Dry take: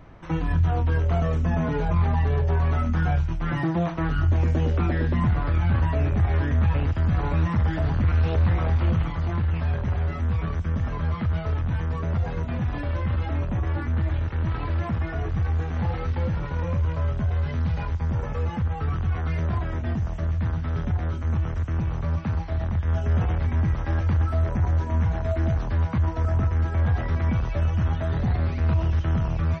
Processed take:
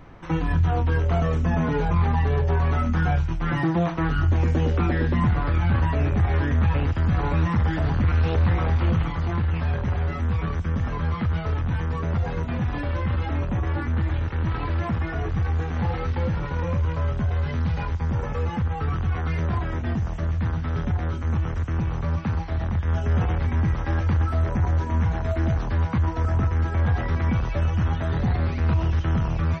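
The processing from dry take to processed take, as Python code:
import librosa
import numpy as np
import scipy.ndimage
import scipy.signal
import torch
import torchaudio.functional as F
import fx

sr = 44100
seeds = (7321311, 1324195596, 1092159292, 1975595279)

y = fx.peak_eq(x, sr, hz=65.0, db=-3.0, octaves=2.5)
y = fx.notch(y, sr, hz=630.0, q=12.0)
y = y * librosa.db_to_amplitude(3.0)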